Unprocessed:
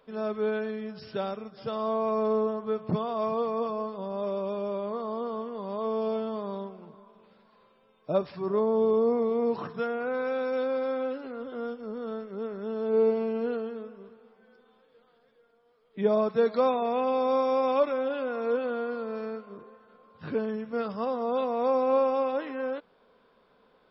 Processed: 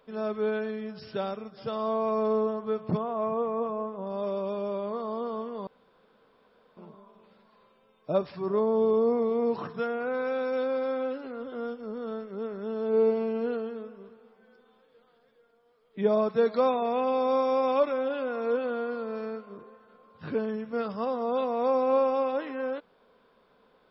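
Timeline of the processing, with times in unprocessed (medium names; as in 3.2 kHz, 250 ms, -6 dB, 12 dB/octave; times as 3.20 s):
2.97–4.07 s: boxcar filter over 10 samples
5.67–6.77 s: room tone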